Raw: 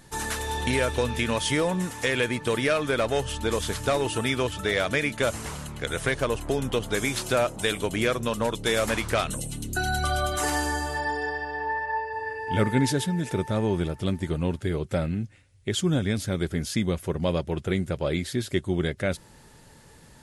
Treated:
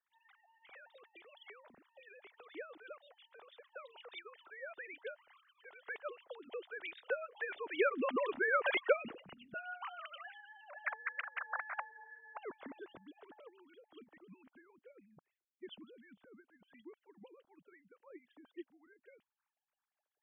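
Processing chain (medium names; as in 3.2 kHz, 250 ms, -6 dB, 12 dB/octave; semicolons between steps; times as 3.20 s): formants replaced by sine waves; Doppler pass-by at 8.43 s, 10 m/s, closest 4.1 m; harmonic-percussive split harmonic -17 dB; trim +2 dB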